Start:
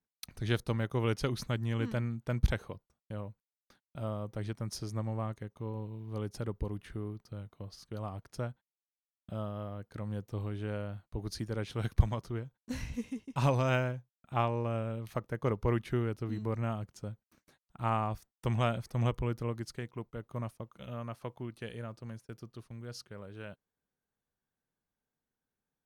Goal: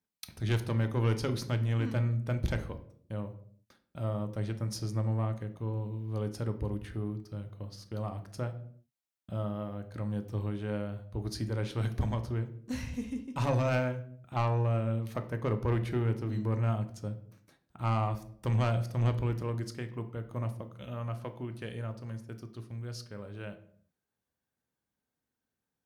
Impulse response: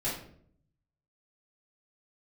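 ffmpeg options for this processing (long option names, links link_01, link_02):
-filter_complex "[0:a]highpass=44,asoftclip=type=tanh:threshold=-24dB,asplit=2[link_01][link_02];[1:a]atrim=start_sample=2205,afade=type=out:start_time=0.43:duration=0.01,atrim=end_sample=19404[link_03];[link_02][link_03]afir=irnorm=-1:irlink=0,volume=-12dB[link_04];[link_01][link_04]amix=inputs=2:normalize=0"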